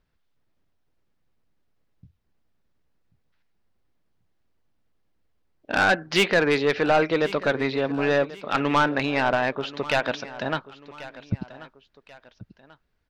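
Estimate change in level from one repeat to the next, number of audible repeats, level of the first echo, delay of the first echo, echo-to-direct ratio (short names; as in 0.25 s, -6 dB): -8.5 dB, 2, -17.0 dB, 1.087 s, -16.5 dB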